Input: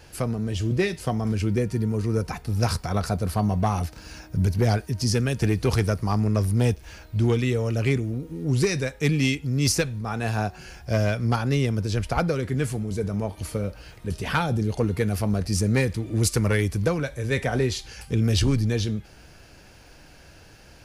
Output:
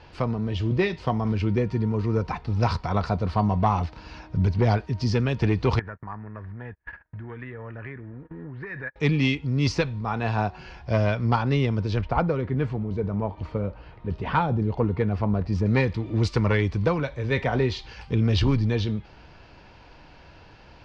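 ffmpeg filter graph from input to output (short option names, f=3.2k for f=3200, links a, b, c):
-filter_complex "[0:a]asettb=1/sr,asplit=3[a][b][c];[a]atrim=end=5.794[d];[b]atrim=start=5.79:end=8.96,asetpts=PTS-STARTPTS,afade=t=in:d=0.004:c=qsin,afade=t=out:st=3.166:d=0.004:c=qsin,acompressor=threshold=-34dB:ratio=16:attack=3.2:release=140:knee=1:detection=peak,agate=range=-36dB:threshold=-41dB:ratio=16:release=100:detection=peak,lowpass=f=1.7k:t=q:w=10[e];[c]atrim=start=8.956[f];[d][e]acrossfade=d=0.004:c1=hsin:c2=qsin[g];[g][f]acrossfade=d=0.004:c1=qsin:c2=hsin,asettb=1/sr,asplit=3[h][i][j];[h]atrim=end=12.014[k];[i]atrim=start=12.01:end=15.66,asetpts=PTS-STARTPTS,afade=t=in:d=0.004:c=qsin,afade=t=out:st=3.646:d=0.004:c=qsin,equalizer=f=4.8k:t=o:w=2.4:g=-8,adynamicsmooth=sensitivity=7.5:basefreq=6.2k[l];[j]atrim=start=15.656[m];[k][l]acrossfade=d=0.004:c1=hsin:c2=qsin[n];[n][m]acrossfade=d=0.004:c1=qsin:c2=hsin,lowpass=f=4.3k:w=0.5412,lowpass=f=4.3k:w=1.3066,equalizer=f=970:t=o:w=0.41:g=8.5,bandreject=f=1.6k:w=21"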